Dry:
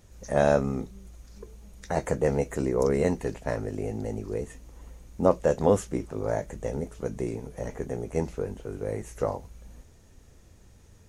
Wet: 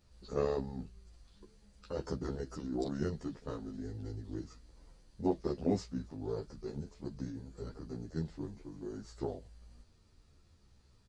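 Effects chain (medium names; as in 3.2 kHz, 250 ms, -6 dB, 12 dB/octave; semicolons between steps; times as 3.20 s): formant shift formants -6 st; endless flanger 11.5 ms -0.57 Hz; trim -7 dB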